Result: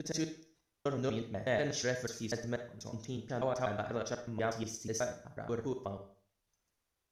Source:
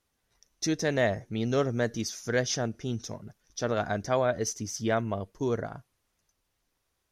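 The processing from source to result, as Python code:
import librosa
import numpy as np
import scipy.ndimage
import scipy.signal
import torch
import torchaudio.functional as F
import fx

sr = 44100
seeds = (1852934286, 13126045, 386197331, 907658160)

y = fx.block_reorder(x, sr, ms=122.0, group=7)
y = fx.rev_schroeder(y, sr, rt60_s=0.47, comb_ms=38, drr_db=7.0)
y = y * librosa.db_to_amplitude(-7.5)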